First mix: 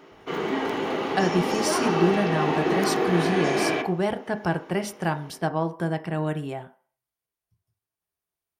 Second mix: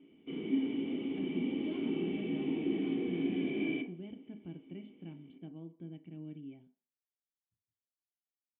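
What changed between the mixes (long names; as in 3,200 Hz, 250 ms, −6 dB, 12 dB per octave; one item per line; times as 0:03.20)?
speech −9.5 dB
master: add formant resonators in series i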